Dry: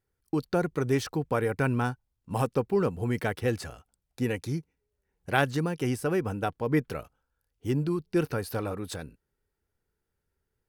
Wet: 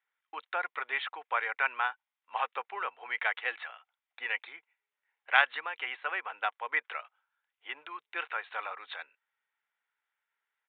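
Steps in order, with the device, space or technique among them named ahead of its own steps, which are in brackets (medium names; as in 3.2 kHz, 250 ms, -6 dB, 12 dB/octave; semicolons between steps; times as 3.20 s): musical greeting card (resampled via 8 kHz; high-pass 860 Hz 24 dB/octave; peaking EQ 2.1 kHz +6 dB 0.43 oct); trim +3 dB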